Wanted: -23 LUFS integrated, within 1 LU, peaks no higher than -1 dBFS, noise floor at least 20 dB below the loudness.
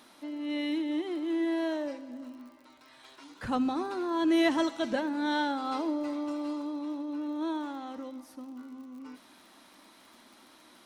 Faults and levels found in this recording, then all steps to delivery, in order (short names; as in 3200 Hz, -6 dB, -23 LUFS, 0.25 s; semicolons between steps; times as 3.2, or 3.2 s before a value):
ticks 59/s; loudness -31.5 LUFS; peak -14.5 dBFS; loudness target -23.0 LUFS
-> de-click; gain +8.5 dB